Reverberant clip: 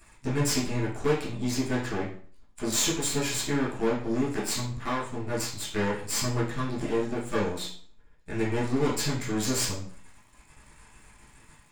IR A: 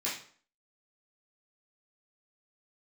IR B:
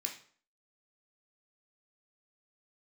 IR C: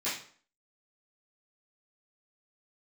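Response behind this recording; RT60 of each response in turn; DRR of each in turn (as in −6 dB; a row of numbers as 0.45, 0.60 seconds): A; 0.50, 0.50, 0.50 seconds; −9.0, 1.0, −13.5 decibels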